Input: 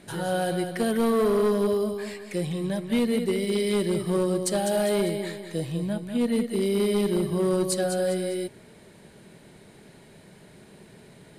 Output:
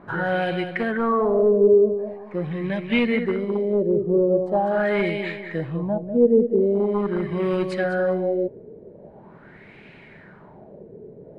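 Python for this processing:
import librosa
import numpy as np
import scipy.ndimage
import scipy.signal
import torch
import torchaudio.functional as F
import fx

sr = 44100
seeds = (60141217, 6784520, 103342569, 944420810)

y = fx.filter_lfo_lowpass(x, sr, shape='sine', hz=0.43, low_hz=440.0, high_hz=2500.0, q=4.1)
y = fx.rider(y, sr, range_db=10, speed_s=2.0)
y = y * 10.0 ** (-1.0 / 20.0)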